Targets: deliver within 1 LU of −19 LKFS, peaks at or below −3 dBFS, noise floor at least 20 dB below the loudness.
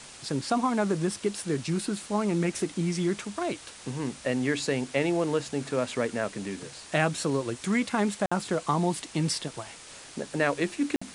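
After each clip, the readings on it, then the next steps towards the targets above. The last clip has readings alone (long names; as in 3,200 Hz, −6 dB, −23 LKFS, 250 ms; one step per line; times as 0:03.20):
number of dropouts 2; longest dropout 55 ms; background noise floor −47 dBFS; target noise floor −49 dBFS; integrated loudness −29.0 LKFS; sample peak −8.5 dBFS; target loudness −19.0 LKFS
→ repair the gap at 0:08.26/0:10.96, 55 ms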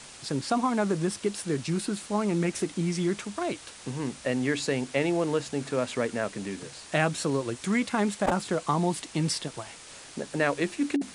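number of dropouts 0; background noise floor −47 dBFS; target noise floor −49 dBFS
→ noise reduction from a noise print 6 dB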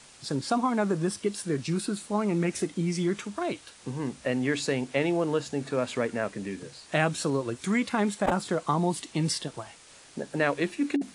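background noise floor −52 dBFS; integrated loudness −29.0 LKFS; sample peak −8.5 dBFS; target loudness −19.0 LKFS
→ level +10 dB
brickwall limiter −3 dBFS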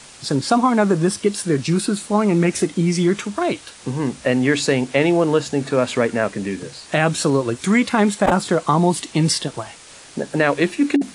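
integrated loudness −19.0 LKFS; sample peak −3.0 dBFS; background noise floor −42 dBFS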